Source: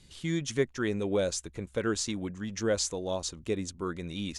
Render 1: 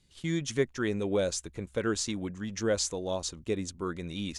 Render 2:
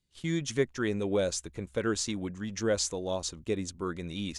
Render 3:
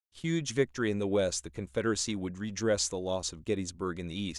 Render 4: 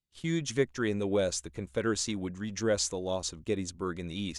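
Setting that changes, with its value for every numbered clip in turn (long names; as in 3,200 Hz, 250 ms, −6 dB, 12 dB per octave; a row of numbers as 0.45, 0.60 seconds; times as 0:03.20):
noise gate, range: −10, −23, −58, −35 decibels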